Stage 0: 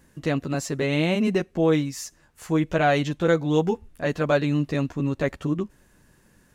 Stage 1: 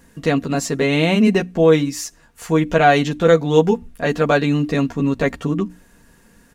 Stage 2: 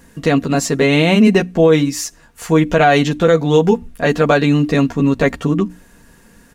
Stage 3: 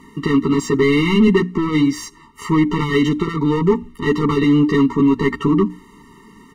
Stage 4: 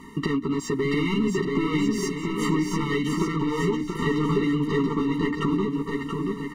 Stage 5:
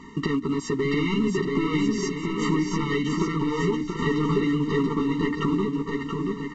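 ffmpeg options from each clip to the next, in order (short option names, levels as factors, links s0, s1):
-af "bandreject=f=60:t=h:w=6,bandreject=f=120:t=h:w=6,bandreject=f=180:t=h:w=6,bandreject=f=240:t=h:w=6,bandreject=f=300:t=h:w=6,aecho=1:1:4.3:0.41,volume=2.11"
-af "alimiter=level_in=1.88:limit=0.891:release=50:level=0:latency=1,volume=0.891"
-filter_complex "[0:a]asplit=2[s0][s1];[s1]highpass=f=720:p=1,volume=14.1,asoftclip=type=tanh:threshold=0.794[s2];[s0][s2]amix=inputs=2:normalize=0,lowpass=f=1000:p=1,volume=0.501,afftfilt=real='re*eq(mod(floor(b*sr/1024/450),2),0)':imag='im*eq(mod(floor(b*sr/1024/450),2),0)':win_size=1024:overlap=0.75,volume=0.75"
-filter_complex "[0:a]acompressor=threshold=0.0708:ratio=6,asplit=2[s0][s1];[s1]aecho=0:1:680|1190|1572|1859|2075:0.631|0.398|0.251|0.158|0.1[s2];[s0][s2]amix=inputs=2:normalize=0"
-ar 16000 -c:a pcm_mulaw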